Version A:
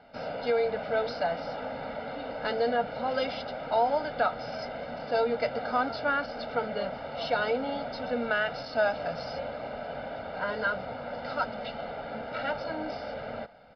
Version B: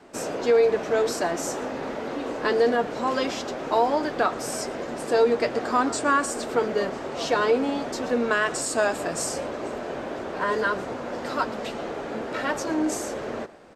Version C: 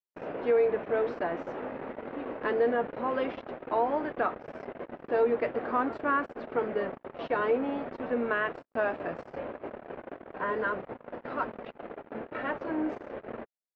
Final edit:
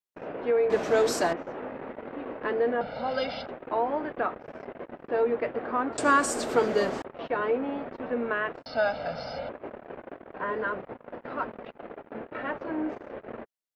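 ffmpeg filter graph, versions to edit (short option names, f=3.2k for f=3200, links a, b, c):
-filter_complex "[1:a]asplit=2[a][b];[0:a]asplit=2[c][d];[2:a]asplit=5[e][f][g][h][i];[e]atrim=end=0.702[j];[a]atrim=start=0.698:end=1.332[k];[f]atrim=start=1.328:end=2.812[l];[c]atrim=start=2.808:end=3.462[m];[g]atrim=start=3.458:end=5.982[n];[b]atrim=start=5.978:end=7.022[o];[h]atrim=start=7.018:end=8.662[p];[d]atrim=start=8.658:end=9.492[q];[i]atrim=start=9.488[r];[j][k]acrossfade=d=0.004:c1=hsin:c2=hsin[s];[s][l]acrossfade=d=0.004:c1=hsin:c2=hsin[t];[t][m]acrossfade=d=0.004:c1=hsin:c2=hsin[u];[u][n]acrossfade=d=0.004:c1=hsin:c2=hsin[v];[v][o]acrossfade=d=0.004:c1=hsin:c2=hsin[w];[w][p]acrossfade=d=0.004:c1=hsin:c2=hsin[x];[x][q]acrossfade=d=0.004:c1=hsin:c2=hsin[y];[y][r]acrossfade=d=0.004:c1=hsin:c2=hsin"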